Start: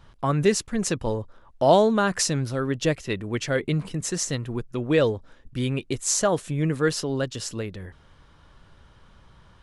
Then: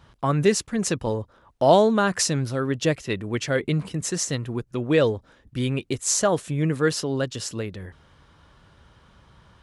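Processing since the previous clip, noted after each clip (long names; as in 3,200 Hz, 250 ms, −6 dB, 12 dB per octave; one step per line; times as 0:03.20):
high-pass filter 48 Hz
level +1 dB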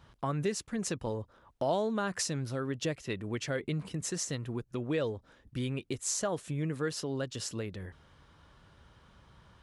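downward compressor 2 to 1, threshold −29 dBFS, peak gain reduction 10 dB
level −5 dB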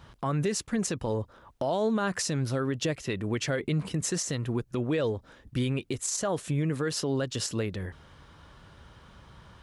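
brickwall limiter −27 dBFS, peak gain reduction 10 dB
level +7 dB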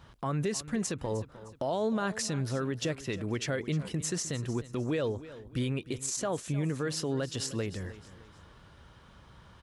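repeating echo 307 ms, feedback 37%, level −16 dB
level −3 dB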